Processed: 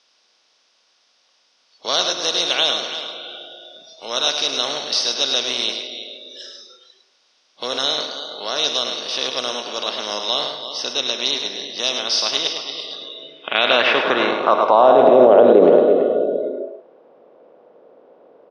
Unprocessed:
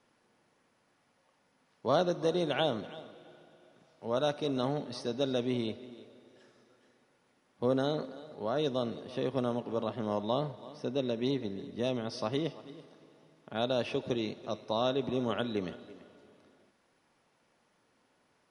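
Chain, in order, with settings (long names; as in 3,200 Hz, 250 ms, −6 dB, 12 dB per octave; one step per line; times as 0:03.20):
compressor on every frequency bin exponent 0.6
noise reduction from a noise print of the clip's start 21 dB
parametric band 88 Hz −11.5 dB 0.68 octaves
band-pass filter sweep 5,500 Hz → 500 Hz, 0:12.62–0:15.47
high-frequency loss of the air 65 metres
single-tap delay 105 ms −7 dB
boost into a limiter +28.5 dB
level −1 dB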